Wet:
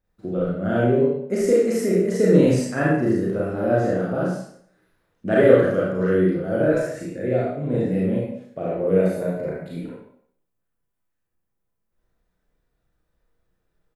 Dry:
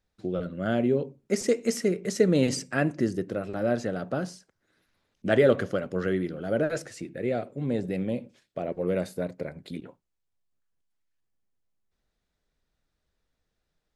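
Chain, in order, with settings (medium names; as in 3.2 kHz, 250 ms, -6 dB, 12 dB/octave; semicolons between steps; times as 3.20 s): peaking EQ 4.6 kHz -11.5 dB 2.3 oct; doubling 32 ms -6 dB; reverberation RT60 0.60 s, pre-delay 32 ms, DRR -5.5 dB; trim +1 dB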